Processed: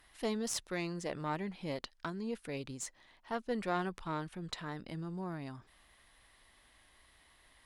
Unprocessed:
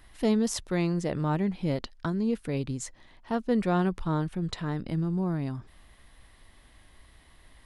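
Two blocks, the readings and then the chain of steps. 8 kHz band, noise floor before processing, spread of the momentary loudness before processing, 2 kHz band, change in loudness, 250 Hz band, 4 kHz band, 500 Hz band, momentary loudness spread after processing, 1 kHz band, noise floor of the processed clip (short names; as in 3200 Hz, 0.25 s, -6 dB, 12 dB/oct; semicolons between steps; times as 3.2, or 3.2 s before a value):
-3.5 dB, -57 dBFS, 7 LU, -3.5 dB, -10.0 dB, -12.5 dB, -3.5 dB, -8.5 dB, 7 LU, -5.0 dB, -66 dBFS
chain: low shelf 370 Hz -11.5 dB; added harmonics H 6 -24 dB, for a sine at -13 dBFS; gain -3.5 dB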